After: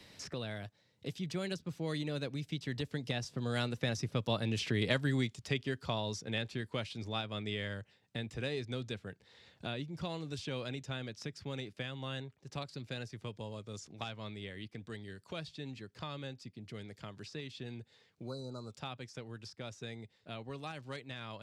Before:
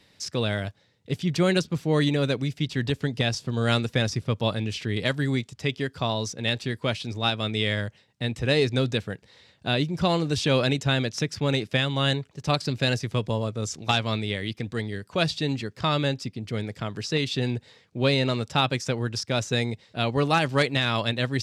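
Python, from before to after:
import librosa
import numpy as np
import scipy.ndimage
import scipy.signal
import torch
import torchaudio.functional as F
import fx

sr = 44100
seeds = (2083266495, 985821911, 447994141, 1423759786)

y = fx.doppler_pass(x, sr, speed_mps=11, closest_m=4.7, pass_at_s=4.87)
y = fx.spec_repair(y, sr, seeds[0], start_s=18.26, length_s=0.43, low_hz=1500.0, high_hz=3900.0, source='both')
y = fx.band_squash(y, sr, depth_pct=70)
y = F.gain(torch.from_numpy(y), 2.5).numpy()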